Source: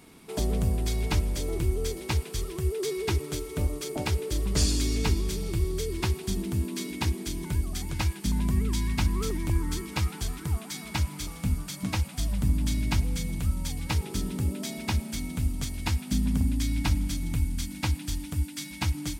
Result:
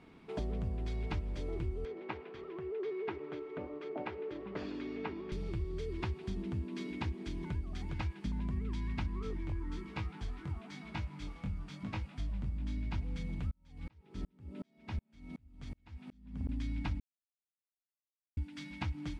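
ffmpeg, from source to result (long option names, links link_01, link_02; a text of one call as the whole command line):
ffmpeg -i in.wav -filter_complex "[0:a]asettb=1/sr,asplit=3[link_01][link_02][link_03];[link_01]atrim=end=1.854[link_04];[link_02]atrim=start=1.85:end=5.32,asetpts=PTS-STARTPTS,afade=type=in:duration=0.004:curve=qsin,afade=type=out:start_time=3.466:duration=0.004:curve=qsin,highpass=290,lowpass=2200[link_05];[link_03]atrim=start=5.316[link_06];[link_04][link_05]acrossfade=duration=0.004:curve1=hsin:curve2=qsin[link_07];[link_07][link_06]acrossfade=duration=0.004:curve1=qsin:curve2=hsin,asplit=3[link_08][link_09][link_10];[link_08]afade=type=out:start_time=9.19:duration=0.02[link_11];[link_09]flanger=delay=18.5:depth=3.3:speed=1,afade=type=in:start_time=9.19:duration=0.02,afade=type=out:start_time=12.94:duration=0.02[link_12];[link_10]afade=type=in:start_time=12.94:duration=0.02[link_13];[link_11][link_12][link_13]amix=inputs=3:normalize=0,asettb=1/sr,asplit=3[link_14][link_15][link_16];[link_14]atrim=end=13.514[link_17];[link_15]atrim=start=13.51:end=16.49,asetpts=PTS-STARTPTS,afade=type=in:duration=0.004:curve=qsin,afade=type=out:start_time=2.976:duration=0.004:curve=qsin,aeval=exprs='val(0)*pow(10,-40*if(lt(mod(-2.7*n/s,1),2*abs(-2.7)/1000),1-mod(-2.7*n/s,1)/(2*abs(-2.7)/1000),(mod(-2.7*n/s,1)-2*abs(-2.7)/1000)/(1-2*abs(-2.7)/1000))/20)':channel_layout=same[link_18];[link_16]atrim=start=16.486[link_19];[link_17][link_18]acrossfade=duration=0.004:curve1=hsin:curve2=qsin[link_20];[link_20][link_19]acrossfade=duration=0.004:curve1=qsin:curve2=hsin,asplit=3[link_21][link_22][link_23];[link_21]atrim=end=17,asetpts=PTS-STARTPTS,afade=type=out:start_time=16.996:duration=0.004:curve=hsin[link_24];[link_22]atrim=start=17:end=18.37,asetpts=PTS-STARTPTS,volume=0[link_25];[link_23]atrim=start=18.37,asetpts=PTS-STARTPTS,afade=type=in:duration=0.004:curve=hsin[link_26];[link_24][link_25][link_26]concat=n=3:v=0:a=1,lowpass=2700,acompressor=threshold=-31dB:ratio=2.5,volume=-4.5dB" out.wav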